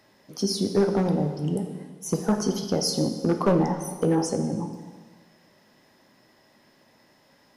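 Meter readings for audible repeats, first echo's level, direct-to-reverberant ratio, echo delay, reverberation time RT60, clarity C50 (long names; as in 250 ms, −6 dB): no echo audible, no echo audible, 6.0 dB, no echo audible, 1.5 s, 8.0 dB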